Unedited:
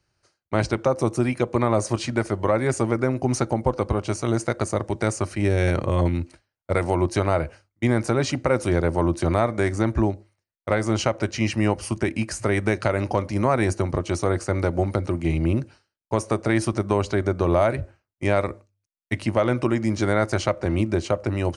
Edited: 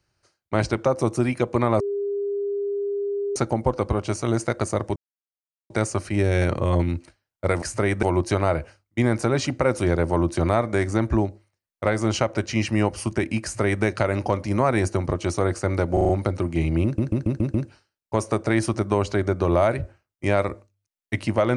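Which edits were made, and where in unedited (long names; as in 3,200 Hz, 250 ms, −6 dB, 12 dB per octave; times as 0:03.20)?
0:01.80–0:03.36: beep over 403 Hz −23 dBFS
0:04.96: splice in silence 0.74 s
0:12.28–0:12.69: duplicate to 0:06.88
0:14.78: stutter 0.04 s, 5 plays
0:15.53: stutter 0.14 s, 6 plays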